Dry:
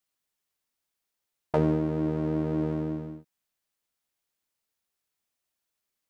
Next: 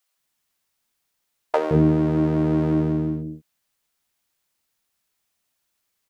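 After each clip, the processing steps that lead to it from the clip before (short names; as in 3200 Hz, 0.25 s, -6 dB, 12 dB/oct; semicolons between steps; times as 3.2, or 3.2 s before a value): bands offset in time highs, lows 0.17 s, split 440 Hz; gain +8.5 dB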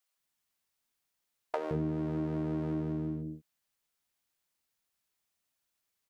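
compressor 3:1, threshold -24 dBFS, peak gain reduction 9 dB; gain -7.5 dB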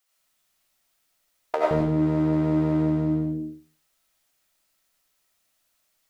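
reverb RT60 0.40 s, pre-delay 50 ms, DRR -3 dB; gain +7 dB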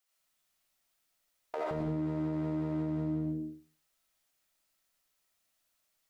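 limiter -19.5 dBFS, peak gain reduction 10 dB; gain -6.5 dB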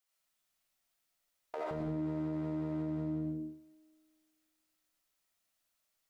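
spring tank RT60 2 s, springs 48 ms, chirp 25 ms, DRR 17 dB; gain -3.5 dB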